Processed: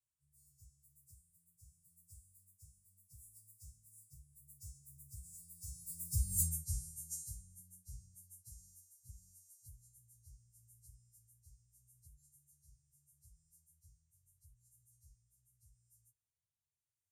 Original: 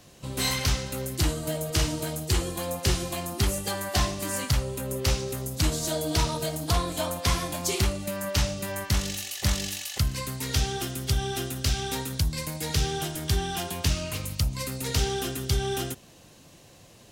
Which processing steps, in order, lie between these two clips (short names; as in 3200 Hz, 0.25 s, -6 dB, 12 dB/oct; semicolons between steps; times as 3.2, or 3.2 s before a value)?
frequency quantiser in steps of 2 st; Doppler pass-by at 6.4, 29 m/s, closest 1.9 m; low shelf 100 Hz -7 dB; rotary speaker horn 0.8 Hz; inverse Chebyshev band-stop 290–3400 Hz, stop band 50 dB; high shelf 5400 Hz -11.5 dB; gain +10 dB